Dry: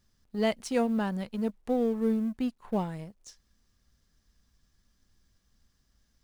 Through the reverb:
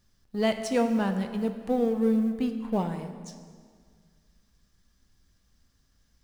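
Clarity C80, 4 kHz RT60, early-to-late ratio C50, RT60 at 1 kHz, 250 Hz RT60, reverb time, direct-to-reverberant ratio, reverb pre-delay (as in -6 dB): 10.0 dB, 1.5 s, 8.5 dB, 1.8 s, 2.2 s, 1.9 s, 6.5 dB, 7 ms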